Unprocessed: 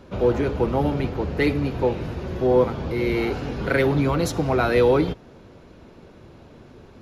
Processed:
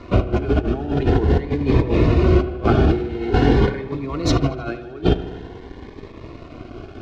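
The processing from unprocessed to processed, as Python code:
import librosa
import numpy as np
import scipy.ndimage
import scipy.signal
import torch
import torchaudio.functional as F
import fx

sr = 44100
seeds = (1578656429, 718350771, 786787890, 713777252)

p1 = np.sign(x) * np.maximum(np.abs(x) - 10.0 ** (-48.5 / 20.0), 0.0)
p2 = p1 + 0.46 * np.pad(p1, (int(2.8 * sr / 1000.0), 0))[:len(p1)]
p3 = fx.quant_companded(p2, sr, bits=4)
p4 = p2 + (p3 * 10.0 ** (-9.5 / 20.0))
p5 = fx.over_compress(p4, sr, threshold_db=-25.0, ratio=-0.5)
p6 = fx.air_absorb(p5, sr, metres=180.0)
p7 = fx.echo_wet_lowpass(p6, sr, ms=77, feedback_pct=68, hz=3300.0, wet_db=-13.5)
p8 = fx.notch_cascade(p7, sr, direction='rising', hz=0.47)
y = p8 * 10.0 ** (7.5 / 20.0)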